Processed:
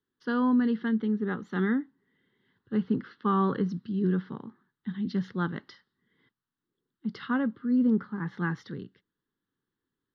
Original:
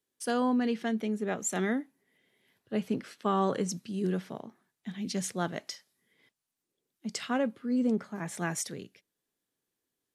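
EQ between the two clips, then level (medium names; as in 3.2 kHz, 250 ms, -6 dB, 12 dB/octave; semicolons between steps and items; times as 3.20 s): distance through air 360 m; peaking EQ 11 kHz -15 dB 0.68 oct; static phaser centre 2.4 kHz, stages 6; +6.5 dB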